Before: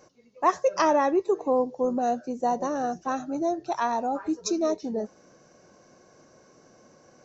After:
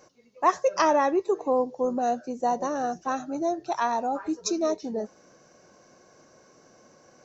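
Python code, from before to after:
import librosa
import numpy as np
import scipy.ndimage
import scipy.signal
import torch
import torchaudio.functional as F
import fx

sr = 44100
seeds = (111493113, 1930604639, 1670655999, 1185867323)

y = fx.low_shelf(x, sr, hz=480.0, db=-4.0)
y = F.gain(torch.from_numpy(y), 1.5).numpy()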